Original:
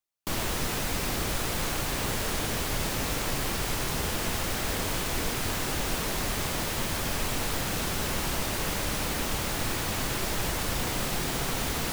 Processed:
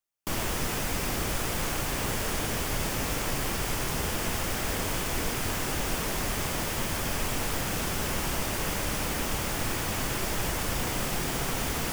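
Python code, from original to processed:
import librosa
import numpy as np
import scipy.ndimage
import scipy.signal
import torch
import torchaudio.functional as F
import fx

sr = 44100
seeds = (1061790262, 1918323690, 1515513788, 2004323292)

y = fx.peak_eq(x, sr, hz=4000.0, db=-5.5, octaves=0.29)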